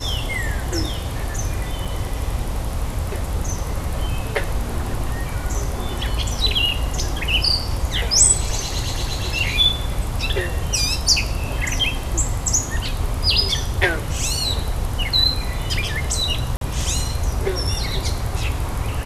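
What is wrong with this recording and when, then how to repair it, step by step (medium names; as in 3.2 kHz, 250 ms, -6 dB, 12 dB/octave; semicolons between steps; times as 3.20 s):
1.85 s: dropout 5 ms
6.69 s: dropout 3 ms
16.57–16.61 s: dropout 42 ms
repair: interpolate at 1.85 s, 5 ms; interpolate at 6.69 s, 3 ms; interpolate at 16.57 s, 42 ms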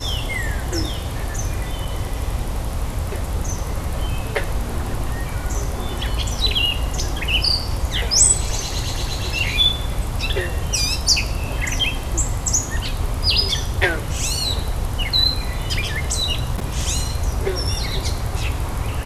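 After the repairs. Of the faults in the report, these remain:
nothing left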